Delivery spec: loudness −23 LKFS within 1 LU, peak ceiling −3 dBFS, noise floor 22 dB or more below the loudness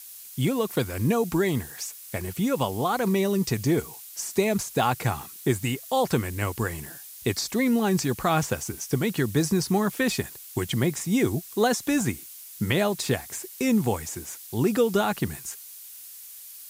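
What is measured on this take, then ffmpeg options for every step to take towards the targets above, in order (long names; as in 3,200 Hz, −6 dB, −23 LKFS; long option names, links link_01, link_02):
background noise floor −44 dBFS; target noise floor −48 dBFS; integrated loudness −26.0 LKFS; sample peak −10.0 dBFS; target loudness −23.0 LKFS
→ -af "afftdn=noise_reduction=6:noise_floor=-44"
-af "volume=3dB"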